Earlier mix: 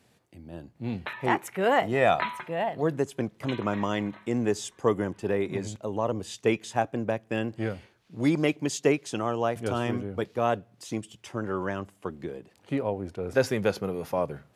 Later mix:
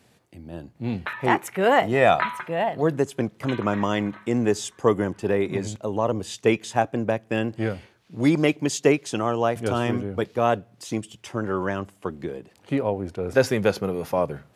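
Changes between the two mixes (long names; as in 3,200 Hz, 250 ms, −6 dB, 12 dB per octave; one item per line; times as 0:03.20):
speech +4.5 dB
background: add parametric band 1,400 Hz +8.5 dB 0.88 octaves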